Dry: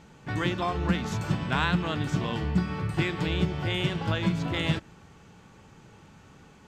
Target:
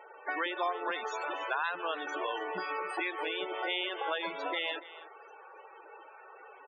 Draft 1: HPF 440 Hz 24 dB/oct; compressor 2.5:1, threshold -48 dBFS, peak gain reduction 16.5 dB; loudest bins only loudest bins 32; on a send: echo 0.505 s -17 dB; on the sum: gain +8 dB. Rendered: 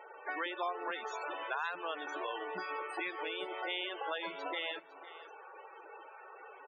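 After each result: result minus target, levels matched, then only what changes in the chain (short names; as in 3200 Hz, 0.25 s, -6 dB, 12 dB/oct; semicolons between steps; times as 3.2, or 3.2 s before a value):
echo 0.22 s late; compressor: peak gain reduction +4 dB
change: echo 0.285 s -17 dB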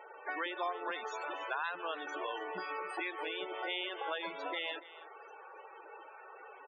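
compressor: peak gain reduction +4 dB
change: compressor 2.5:1, threshold -41 dBFS, peak gain reduction 12.5 dB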